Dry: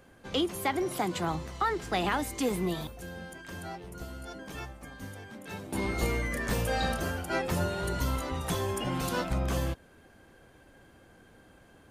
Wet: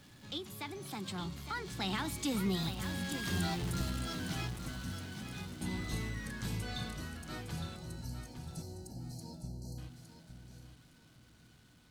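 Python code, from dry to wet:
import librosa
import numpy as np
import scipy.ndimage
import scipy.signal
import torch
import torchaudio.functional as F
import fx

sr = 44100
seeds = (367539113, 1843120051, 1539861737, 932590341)

p1 = x + 0.5 * 10.0 ** (-41.0 / 20.0) * np.sign(x)
p2 = fx.doppler_pass(p1, sr, speed_mps=23, closest_m=13.0, pass_at_s=3.51)
p3 = fx.spec_erase(p2, sr, start_s=7.76, length_s=2.02, low_hz=940.0, high_hz=4000.0)
p4 = fx.graphic_eq_10(p3, sr, hz=(125, 250, 500, 4000, 8000), db=(10, 4, -7, 8, 3))
y = p4 + fx.echo_feedback(p4, sr, ms=860, feedback_pct=23, wet_db=-9, dry=0)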